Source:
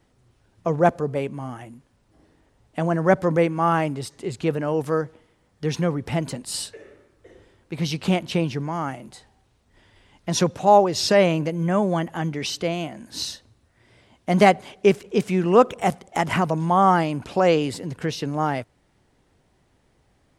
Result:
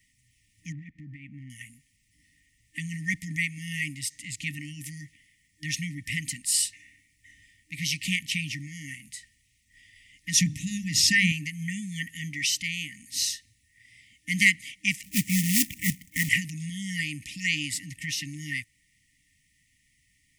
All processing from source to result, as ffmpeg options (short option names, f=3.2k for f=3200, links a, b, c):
-filter_complex "[0:a]asettb=1/sr,asplit=3[a][b][c];[a]atrim=end=0.724[d];[b]atrim=start=0.72:end=1.5,asetpts=PTS-STARTPTS,afade=t=in:d=0.004:c=qsin,afade=t=out:st=0.776:d=0.004:c=qsin,lowpass=1.5k,equalizer=f=560:w=3.1:g=14.5,acompressor=threshold=-23dB:ratio=2.5:attack=3.2:release=140:knee=1:detection=peak[e];[c]atrim=start=1.496[f];[d][e]acrossfade=d=0.004:c1=hsin:c2=qsin[g];[g][f]acrossfade=d=0.004:c1=qsin:c2=hsin,asettb=1/sr,asplit=3[h][i][j];[h]atrim=end=10.364[k];[i]atrim=start=10.36:end=11.32,asetpts=PTS-STARTPTS,afade=t=in:d=0.004:c=qsin,afade=t=out:st=0.956:d=0.004:c=qsin,lowshelf=f=480:g=11,bandreject=f=50:t=h:w=6,bandreject=f=100:t=h:w=6,bandreject=f=150:t=h:w=6,bandreject=f=200:t=h:w=6,bandreject=f=250:t=h:w=6,bandreject=f=300:t=h:w=6,bandreject=f=350:t=h:w=6[l];[j]atrim=start=11.316[m];[k][l]acrossfade=d=0.004:c1=hsin:c2=qsin[n];[n][m]acrossfade=d=0.004:c1=qsin:c2=hsin,asettb=1/sr,asplit=3[o][p][q];[o]atrim=end=15.034[r];[p]atrim=start=15.03:end=16.29,asetpts=PTS-STARTPTS,afade=t=in:d=0.004:c=qsin,afade=t=out:st=1.256:d=0.004:c=qsin,tiltshelf=f=1.3k:g=9,acrusher=bits=5:mode=log:mix=0:aa=0.000001[s];[q]atrim=start=16.286[t];[r][s]acrossfade=d=0.004:c1=hsin:c2=qsin[u];[u][t]acrossfade=d=0.004:c1=qsin:c2=hsin,tiltshelf=f=1.4k:g=-8.5,afftfilt=real='re*(1-between(b*sr/4096,310,1800))':imag='im*(1-between(b*sr/4096,310,1800))':win_size=4096:overlap=0.75,equalizer=f=250:t=o:w=0.67:g=-6,equalizer=f=1.6k:t=o:w=0.67:g=9,equalizer=f=4k:t=o:w=0.67:g=-9"